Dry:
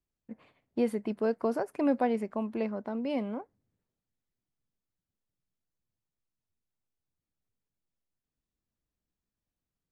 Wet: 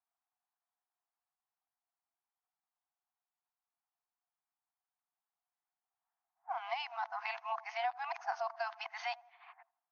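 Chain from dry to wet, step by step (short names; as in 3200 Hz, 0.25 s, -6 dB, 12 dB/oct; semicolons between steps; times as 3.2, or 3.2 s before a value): whole clip reversed; FFT band-pass 670–6600 Hz; on a send: dark delay 83 ms, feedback 47%, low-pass 1000 Hz, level -20.5 dB; on the sum: compressor 10:1, threshold -42 dBFS, peak gain reduction 16.5 dB; low-pass opened by the level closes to 970 Hz, open at -47.5 dBFS; gain +9 dB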